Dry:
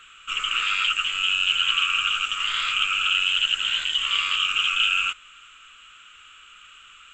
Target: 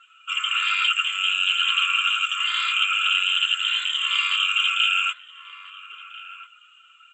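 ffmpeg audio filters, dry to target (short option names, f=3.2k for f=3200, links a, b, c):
-filter_complex "[0:a]highpass=390,afftdn=nr=15:nf=-42,aecho=1:1:2.9:0.56,asplit=2[a][b];[b]adelay=1341,volume=-10dB,highshelf=f=4k:g=-30.2[c];[a][c]amix=inputs=2:normalize=0"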